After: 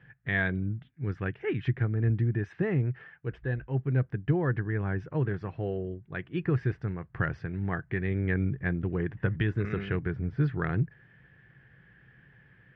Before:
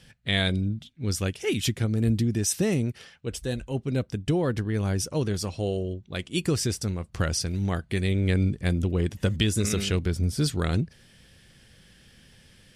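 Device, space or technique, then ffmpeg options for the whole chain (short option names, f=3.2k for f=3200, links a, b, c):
bass cabinet: -af "highpass=60,equalizer=f=82:t=q:w=4:g=-9,equalizer=f=130:t=q:w=4:g=7,equalizer=f=230:t=q:w=4:g=-9,equalizer=f=560:t=q:w=4:g=-7,equalizer=f=1.7k:t=q:w=4:g=8,lowpass=f=2k:w=0.5412,lowpass=f=2k:w=1.3066,volume=-2dB"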